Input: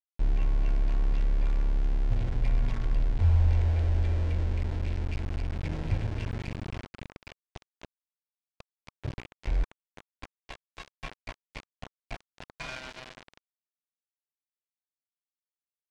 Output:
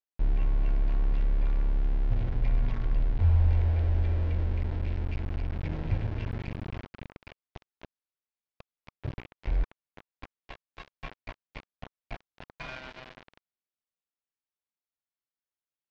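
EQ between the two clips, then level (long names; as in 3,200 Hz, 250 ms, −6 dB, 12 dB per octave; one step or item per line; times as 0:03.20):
high-frequency loss of the air 170 metres
0.0 dB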